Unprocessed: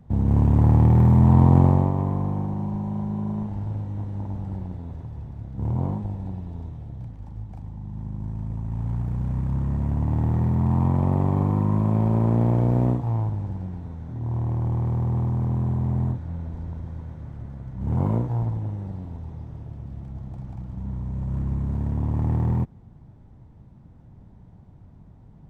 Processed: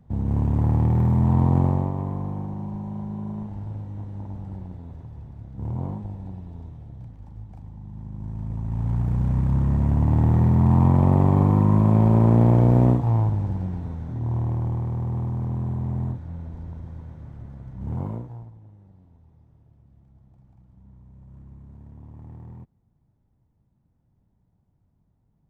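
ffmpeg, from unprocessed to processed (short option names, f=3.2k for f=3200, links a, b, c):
-af "volume=4dB,afade=t=in:st=8.09:d=1.05:silence=0.398107,afade=t=out:st=13.88:d=0.99:silence=0.446684,afade=t=out:st=17.76:d=0.41:silence=0.473151,afade=t=out:st=18.17:d=0.34:silence=0.334965"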